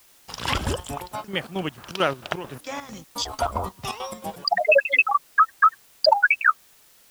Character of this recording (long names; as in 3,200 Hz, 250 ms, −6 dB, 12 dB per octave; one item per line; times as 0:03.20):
chopped level 4.5 Hz, depth 65%, duty 60%
a quantiser's noise floor 10 bits, dither triangular